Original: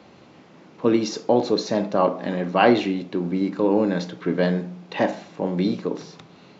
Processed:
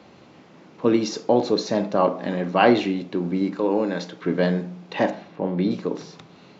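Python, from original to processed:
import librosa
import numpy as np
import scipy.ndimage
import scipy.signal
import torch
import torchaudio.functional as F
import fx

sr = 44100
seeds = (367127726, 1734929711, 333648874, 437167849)

y = fx.highpass(x, sr, hz=310.0, slope=6, at=(3.56, 4.24))
y = fx.air_absorb(y, sr, metres=180.0, at=(5.1, 5.71))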